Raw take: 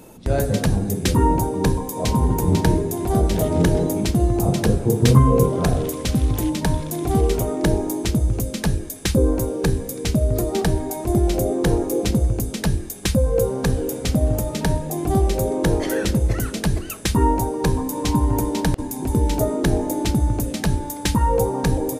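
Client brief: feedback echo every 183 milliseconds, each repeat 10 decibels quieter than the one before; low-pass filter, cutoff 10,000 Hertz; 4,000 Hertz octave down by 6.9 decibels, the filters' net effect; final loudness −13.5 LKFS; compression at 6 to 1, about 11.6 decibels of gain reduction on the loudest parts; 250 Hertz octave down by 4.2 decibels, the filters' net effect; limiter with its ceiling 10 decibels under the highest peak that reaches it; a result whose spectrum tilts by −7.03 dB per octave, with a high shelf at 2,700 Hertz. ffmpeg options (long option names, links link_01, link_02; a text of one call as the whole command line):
ffmpeg -i in.wav -af "lowpass=10000,equalizer=frequency=250:width_type=o:gain=-6,highshelf=frequency=2700:gain=-6,equalizer=frequency=4000:width_type=o:gain=-3.5,acompressor=threshold=-23dB:ratio=6,alimiter=limit=-22dB:level=0:latency=1,aecho=1:1:183|366|549|732:0.316|0.101|0.0324|0.0104,volume=17.5dB" out.wav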